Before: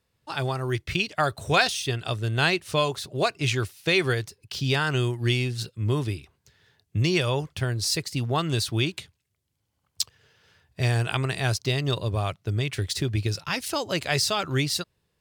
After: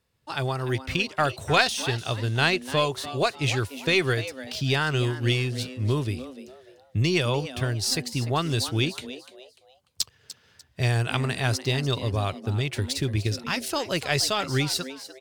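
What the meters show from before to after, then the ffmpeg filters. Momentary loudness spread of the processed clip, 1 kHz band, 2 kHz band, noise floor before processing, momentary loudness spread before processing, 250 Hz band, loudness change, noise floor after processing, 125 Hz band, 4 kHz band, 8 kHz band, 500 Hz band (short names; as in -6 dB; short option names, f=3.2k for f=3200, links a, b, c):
8 LU, +0.5 dB, +0.5 dB, -76 dBFS, 7 LU, +0.5 dB, 0.0 dB, -62 dBFS, 0.0 dB, +0.5 dB, 0.0 dB, +0.5 dB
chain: -filter_complex "[0:a]aeval=exprs='0.596*(cos(1*acos(clip(val(0)/0.596,-1,1)))-cos(1*PI/2))+0.0944*(cos(2*acos(clip(val(0)/0.596,-1,1)))-cos(2*PI/2))':c=same,asplit=4[a][b][c][d];[b]adelay=296,afreqshift=130,volume=-14dB[e];[c]adelay=592,afreqshift=260,volume=-23.9dB[f];[d]adelay=888,afreqshift=390,volume=-33.8dB[g];[a][e][f][g]amix=inputs=4:normalize=0"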